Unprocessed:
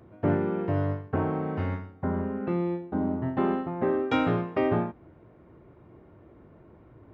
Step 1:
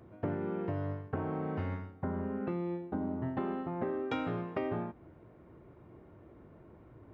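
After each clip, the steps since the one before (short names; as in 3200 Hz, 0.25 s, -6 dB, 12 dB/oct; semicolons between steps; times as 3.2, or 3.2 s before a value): compressor, threshold -29 dBFS, peak gain reduction 9 dB; gain -2.5 dB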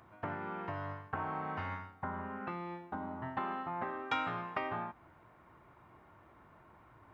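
resonant low shelf 660 Hz -11.5 dB, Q 1.5; gain +4 dB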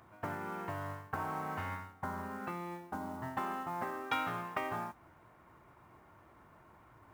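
modulation noise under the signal 23 dB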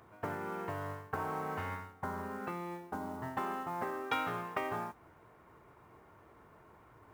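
bell 440 Hz +8.5 dB 0.32 oct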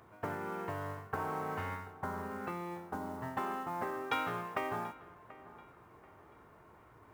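dark delay 0.735 s, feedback 36%, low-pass 3100 Hz, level -18 dB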